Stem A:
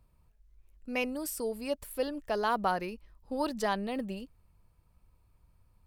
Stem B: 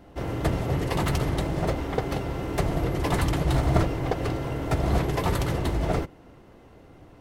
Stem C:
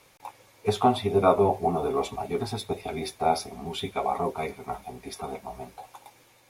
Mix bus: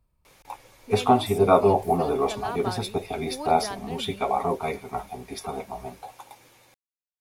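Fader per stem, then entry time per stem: -4.5 dB, off, +2.5 dB; 0.00 s, off, 0.25 s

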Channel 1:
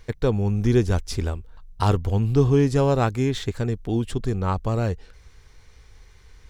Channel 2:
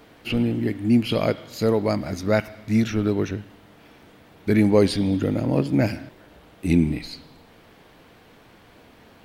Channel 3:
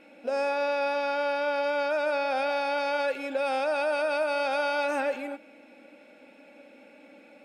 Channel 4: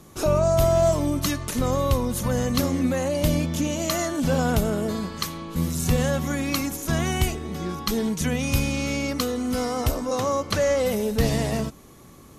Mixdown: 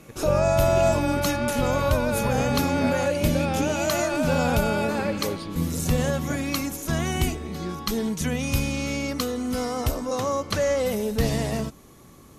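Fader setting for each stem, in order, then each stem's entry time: -16.5, -13.5, -0.5, -1.5 dB; 0.00, 0.50, 0.00, 0.00 s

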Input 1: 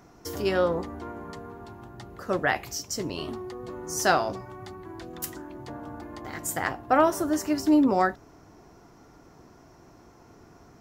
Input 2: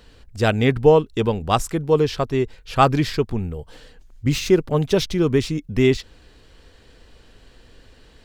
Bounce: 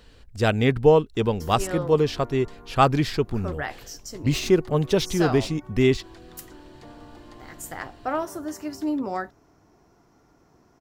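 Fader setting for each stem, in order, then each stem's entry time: -6.5, -2.5 dB; 1.15, 0.00 s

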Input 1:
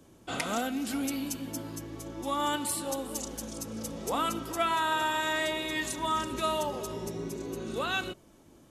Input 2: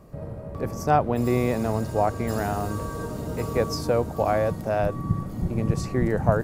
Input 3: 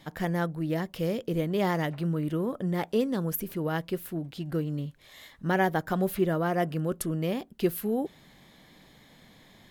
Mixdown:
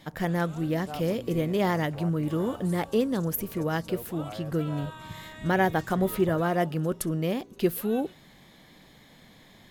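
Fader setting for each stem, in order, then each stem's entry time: -16.5, -18.5, +1.5 dB; 0.00, 0.00, 0.00 s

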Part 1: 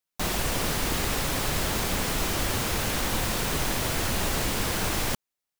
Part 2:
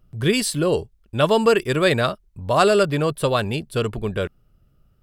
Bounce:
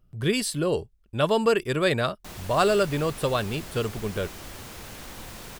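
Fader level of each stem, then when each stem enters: -13.5, -5.0 dB; 2.05, 0.00 s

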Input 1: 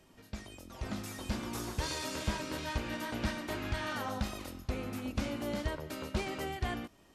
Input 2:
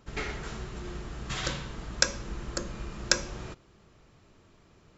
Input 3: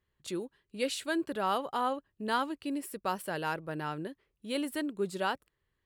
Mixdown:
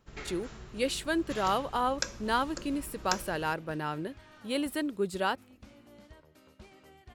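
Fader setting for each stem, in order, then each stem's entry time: -18.5, -8.5, +2.0 dB; 0.45, 0.00, 0.00 s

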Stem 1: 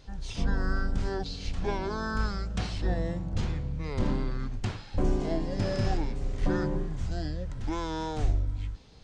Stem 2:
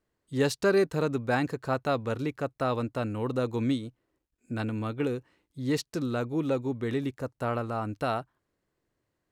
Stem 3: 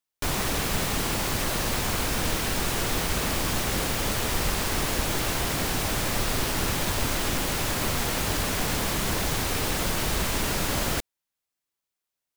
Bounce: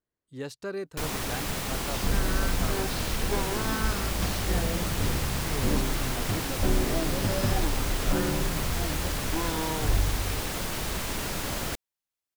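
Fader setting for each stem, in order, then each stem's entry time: +0.5, -11.0, -5.0 dB; 1.65, 0.00, 0.75 s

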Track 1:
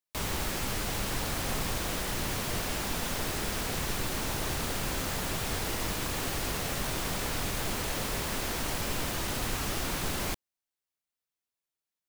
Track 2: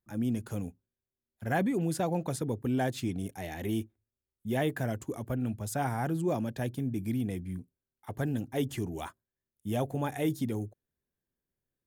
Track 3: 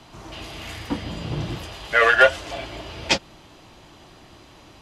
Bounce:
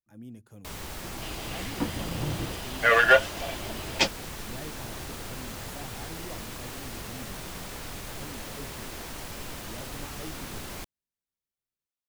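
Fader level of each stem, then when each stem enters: -6.5, -14.0, -3.5 dB; 0.50, 0.00, 0.90 s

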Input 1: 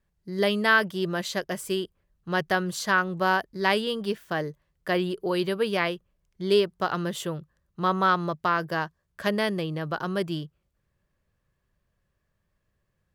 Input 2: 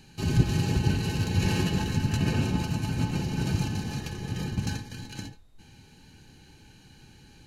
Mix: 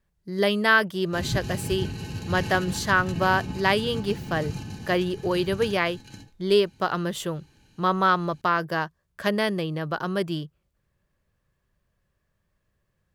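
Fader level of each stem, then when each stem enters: +1.5, -6.0 dB; 0.00, 0.95 s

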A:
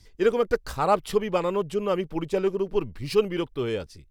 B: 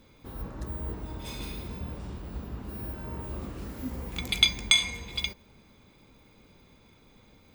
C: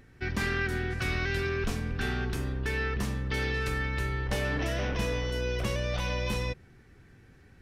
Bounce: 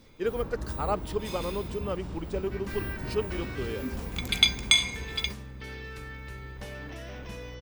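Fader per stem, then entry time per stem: -8.0, +0.5, -10.5 dB; 0.00, 0.00, 2.30 s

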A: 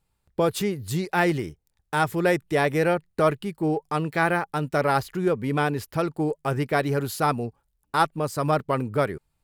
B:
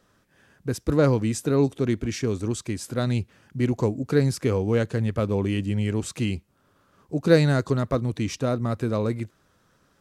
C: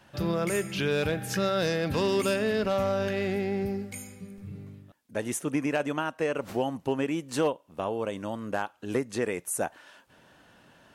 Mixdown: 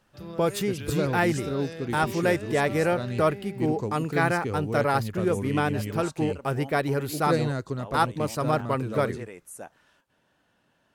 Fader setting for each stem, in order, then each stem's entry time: -2.0, -8.0, -11.5 dB; 0.00, 0.00, 0.00 s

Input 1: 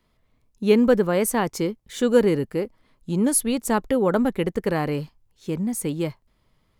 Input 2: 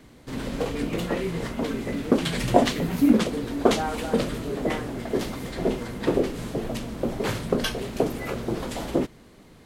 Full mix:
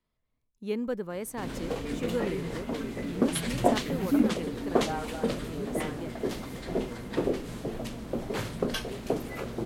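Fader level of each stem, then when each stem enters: -14.5, -5.5 dB; 0.00, 1.10 s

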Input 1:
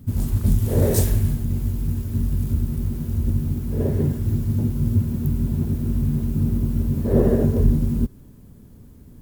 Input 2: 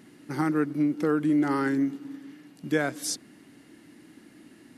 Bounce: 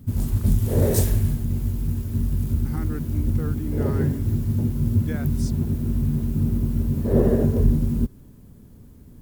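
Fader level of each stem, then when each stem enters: -1.0, -10.5 dB; 0.00, 2.35 s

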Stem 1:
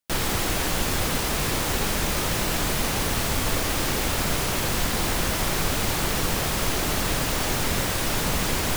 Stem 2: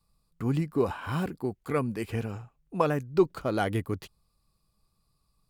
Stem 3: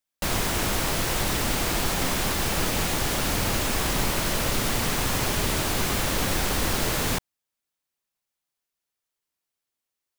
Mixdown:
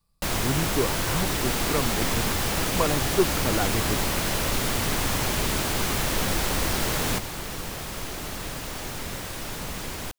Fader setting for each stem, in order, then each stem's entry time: -9.0, 0.0, -1.0 dB; 1.35, 0.00, 0.00 s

